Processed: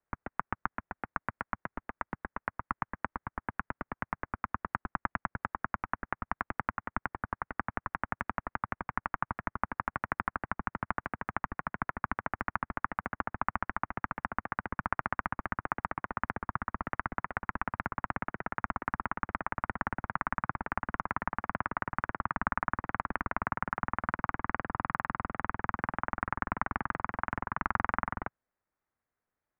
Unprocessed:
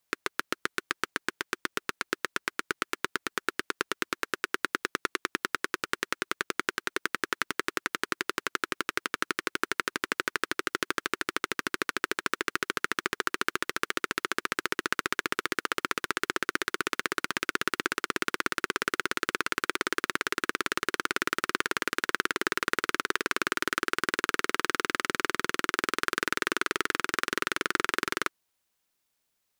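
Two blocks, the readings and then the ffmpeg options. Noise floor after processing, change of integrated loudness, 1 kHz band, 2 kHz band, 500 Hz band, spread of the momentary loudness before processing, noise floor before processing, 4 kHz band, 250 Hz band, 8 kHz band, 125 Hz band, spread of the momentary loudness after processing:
under -85 dBFS, -5.0 dB, 0.0 dB, -7.5 dB, -8.5 dB, 4 LU, -79 dBFS, under -25 dB, -3.5 dB, under -40 dB, +8.5 dB, 5 LU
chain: -af "aeval=exprs='val(0)*sin(2*PI*150*n/s)':c=same,highpass=f=180:t=q:w=0.5412,highpass=f=180:t=q:w=1.307,lowpass=f=2.2k:t=q:w=0.5176,lowpass=f=2.2k:t=q:w=0.7071,lowpass=f=2.2k:t=q:w=1.932,afreqshift=-300"

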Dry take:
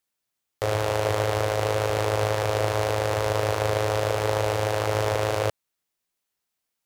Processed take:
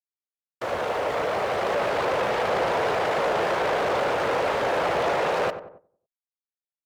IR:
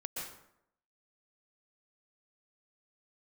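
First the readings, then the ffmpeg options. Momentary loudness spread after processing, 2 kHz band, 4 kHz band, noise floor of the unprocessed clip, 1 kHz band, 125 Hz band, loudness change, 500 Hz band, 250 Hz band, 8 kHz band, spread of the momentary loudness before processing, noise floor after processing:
4 LU, +3.0 dB, -1.5 dB, -82 dBFS, +3.0 dB, -14.0 dB, +0.5 dB, 0.0 dB, +1.0 dB, -8.0 dB, 1 LU, under -85 dBFS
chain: -filter_complex "[0:a]dynaudnorm=f=620:g=5:m=11.5dB,equalizer=f=1.3k:w=0.32:g=8,afftfilt=real='hypot(re,im)*cos(2*PI*random(0))':imag='hypot(re,im)*sin(2*PI*random(1))':win_size=512:overlap=0.75,acrusher=bits=7:dc=4:mix=0:aa=0.000001,asoftclip=type=tanh:threshold=-18.5dB,highpass=f=310:p=1,aemphasis=mode=reproduction:type=50kf,asplit=2[a][b];[b]adelay=93,lowpass=f=1.2k:p=1,volume=-9.5dB,asplit=2[c][d];[d]adelay=93,lowpass=f=1.2k:p=1,volume=0.5,asplit=2[e][f];[f]adelay=93,lowpass=f=1.2k:p=1,volume=0.5,asplit=2[g][h];[h]adelay=93,lowpass=f=1.2k:p=1,volume=0.5,asplit=2[i][j];[j]adelay=93,lowpass=f=1.2k:p=1,volume=0.5,asplit=2[k][l];[l]adelay=93,lowpass=f=1.2k:p=1,volume=0.5[m];[c][e][g][i][k][m]amix=inputs=6:normalize=0[n];[a][n]amix=inputs=2:normalize=0,agate=range=-10dB:threshold=-48dB:ratio=16:detection=peak"

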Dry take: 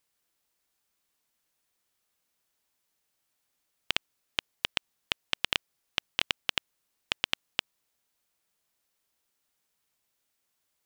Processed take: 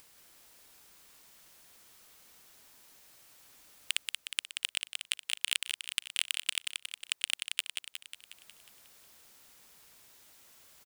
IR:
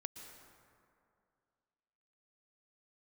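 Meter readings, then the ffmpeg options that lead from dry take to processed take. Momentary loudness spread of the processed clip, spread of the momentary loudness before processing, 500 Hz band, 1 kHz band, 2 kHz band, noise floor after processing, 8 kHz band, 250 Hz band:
14 LU, 6 LU, under -15 dB, -12.0 dB, -2.5 dB, -74 dBFS, +9.5 dB, under -20 dB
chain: -filter_complex "[0:a]asplit=2[a][b];[b]acompressor=mode=upward:threshold=-41dB:ratio=2.5,volume=2dB[c];[a][c]amix=inputs=2:normalize=0,aeval=exprs='0.531*(abs(mod(val(0)/0.531+3,4)-2)-1)':c=same,aecho=1:1:181|362|543|724|905|1086|1267|1448:0.531|0.313|0.185|0.109|0.0643|0.038|0.0224|0.0132,volume=-4.5dB"

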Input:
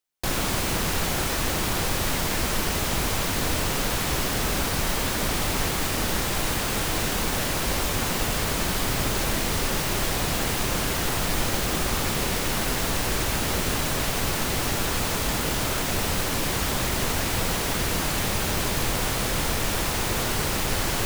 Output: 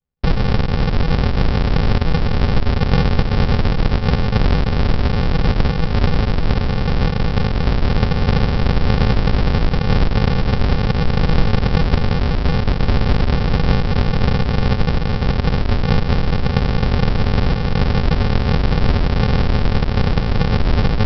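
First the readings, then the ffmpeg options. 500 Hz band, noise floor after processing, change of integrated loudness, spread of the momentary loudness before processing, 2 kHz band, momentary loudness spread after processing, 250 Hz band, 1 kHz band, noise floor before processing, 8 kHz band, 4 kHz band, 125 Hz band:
+6.5 dB, -20 dBFS, +6.5 dB, 0 LU, +1.0 dB, 2 LU, +10.0 dB, +4.0 dB, -27 dBFS, under -20 dB, -1.0 dB, +14.0 dB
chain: -af "tiltshelf=f=760:g=5,aresample=11025,acrusher=samples=34:mix=1:aa=0.000001,aresample=44100,volume=8.5dB"

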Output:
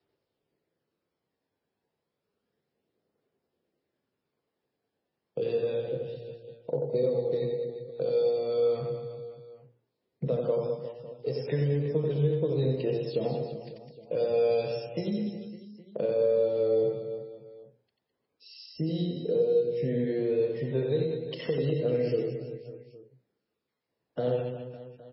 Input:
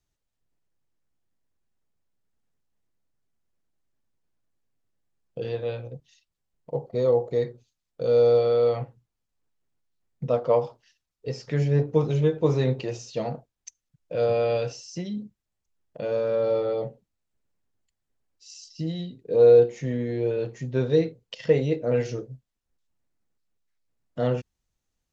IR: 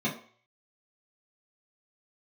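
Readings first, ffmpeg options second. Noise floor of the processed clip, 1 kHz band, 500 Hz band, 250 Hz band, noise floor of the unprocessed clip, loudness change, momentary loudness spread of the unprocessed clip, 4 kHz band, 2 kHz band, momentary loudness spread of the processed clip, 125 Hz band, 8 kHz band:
-84 dBFS, -8.5 dB, -4.0 dB, -2.5 dB, -82 dBFS, -5.0 dB, 17 LU, -3.0 dB, -6.5 dB, 17 LU, -4.0 dB, n/a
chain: -filter_complex "[0:a]aphaser=in_gain=1:out_gain=1:delay=1.3:decay=0.32:speed=0.31:type=triangular,highpass=130,lowpass=5.9k,acrossover=split=220|3000[a][b][c];[b]acompressor=threshold=-44dB:ratio=2[d];[a][d][c]amix=inputs=3:normalize=0,equalizer=f=450:w=1.3:g=14,bandreject=f=60:t=h:w=6,bandreject=f=120:t=h:w=6,bandreject=f=180:t=h:w=6,bandreject=f=240:t=h:w=6,bandreject=f=300:t=h:w=6,bandreject=f=360:t=h:w=6,bandreject=f=420:t=h:w=6,bandreject=f=480:t=h:w=6,bandreject=f=540:t=h:w=6,bandreject=f=600:t=h:w=6,acrossover=split=2600[e][f];[f]asoftclip=type=tanh:threshold=-38dB[g];[e][g]amix=inputs=2:normalize=0,acompressor=threshold=-25dB:ratio=5,crystalizer=i=0.5:c=0,aecho=1:1:90|207|359.1|556.8|813.9:0.631|0.398|0.251|0.158|0.1" -ar 16000 -c:a libmp3lame -b:a 16k

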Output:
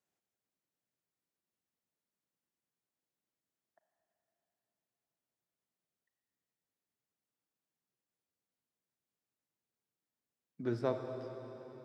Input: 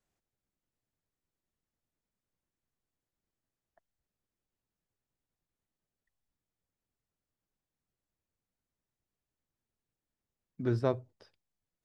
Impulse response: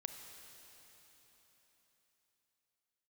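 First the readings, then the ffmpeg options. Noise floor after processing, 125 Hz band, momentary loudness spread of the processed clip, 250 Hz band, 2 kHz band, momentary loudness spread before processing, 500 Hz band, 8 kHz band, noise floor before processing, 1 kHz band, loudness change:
under -85 dBFS, -8.5 dB, 13 LU, -3.5 dB, -3.0 dB, 7 LU, -2.5 dB, n/a, under -85 dBFS, -2.5 dB, -6.0 dB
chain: -filter_complex "[0:a]highpass=160[a];[1:a]atrim=start_sample=2205[b];[a][b]afir=irnorm=-1:irlink=0"

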